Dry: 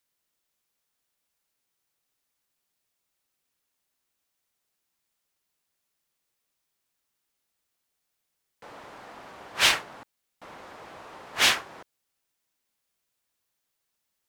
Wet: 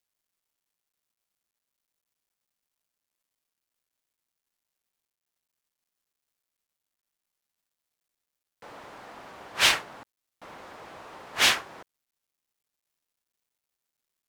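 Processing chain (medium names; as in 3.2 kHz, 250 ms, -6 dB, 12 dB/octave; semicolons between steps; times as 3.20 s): spectral selection erased 5.07–5.28 s, 2.4–6 kHz; word length cut 12-bit, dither none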